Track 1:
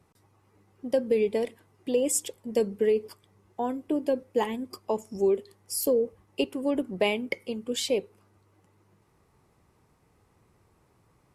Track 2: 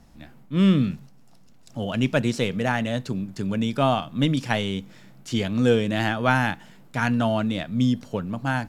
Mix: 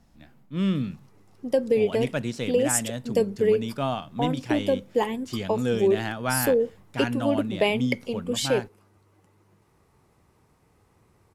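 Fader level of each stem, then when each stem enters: +2.5 dB, -6.5 dB; 0.60 s, 0.00 s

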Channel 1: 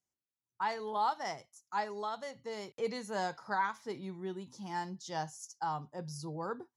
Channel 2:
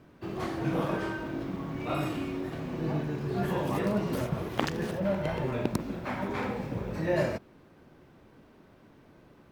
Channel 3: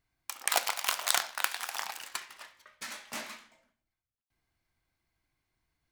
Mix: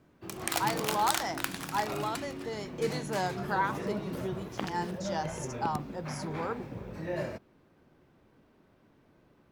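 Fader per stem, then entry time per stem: +3.0 dB, -7.0 dB, -4.0 dB; 0.00 s, 0.00 s, 0.00 s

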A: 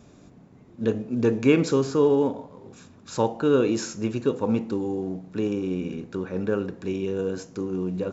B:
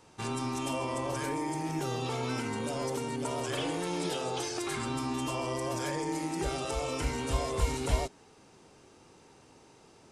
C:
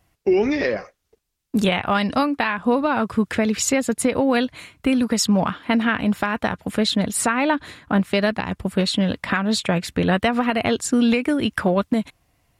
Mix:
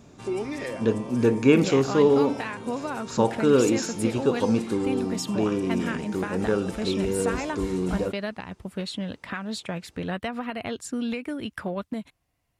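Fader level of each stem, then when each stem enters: +1.0 dB, -7.0 dB, -11.5 dB; 0.00 s, 0.00 s, 0.00 s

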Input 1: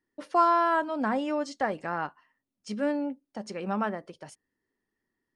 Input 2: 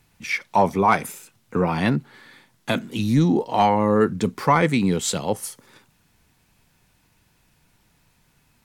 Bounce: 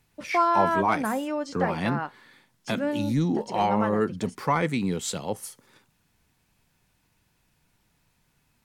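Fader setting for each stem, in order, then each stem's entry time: 0.0 dB, -6.5 dB; 0.00 s, 0.00 s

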